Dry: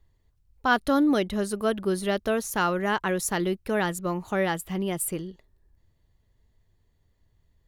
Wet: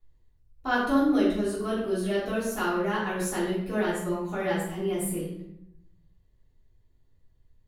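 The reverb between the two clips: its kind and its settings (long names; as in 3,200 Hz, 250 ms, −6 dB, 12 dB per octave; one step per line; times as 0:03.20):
rectangular room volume 180 cubic metres, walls mixed, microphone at 3.3 metres
level −13.5 dB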